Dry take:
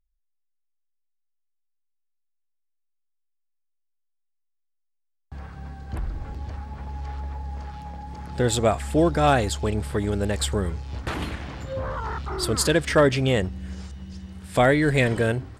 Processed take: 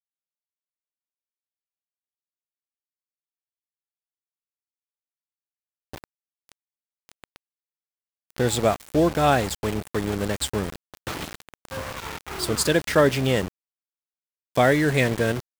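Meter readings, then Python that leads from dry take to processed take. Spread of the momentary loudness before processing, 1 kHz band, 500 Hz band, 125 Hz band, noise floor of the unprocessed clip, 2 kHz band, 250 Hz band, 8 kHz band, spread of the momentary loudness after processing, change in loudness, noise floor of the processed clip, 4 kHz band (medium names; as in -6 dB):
18 LU, -0.5 dB, 0.0 dB, -3.0 dB, -74 dBFS, 0.0 dB, -0.5 dB, 0.0 dB, 15 LU, +0.5 dB, under -85 dBFS, 0.0 dB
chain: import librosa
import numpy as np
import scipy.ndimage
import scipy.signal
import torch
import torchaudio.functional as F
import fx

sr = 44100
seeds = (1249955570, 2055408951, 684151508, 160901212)

y = scipy.signal.sosfilt(scipy.signal.butter(2, 95.0, 'highpass', fs=sr, output='sos'), x)
y = np.where(np.abs(y) >= 10.0 ** (-27.5 / 20.0), y, 0.0)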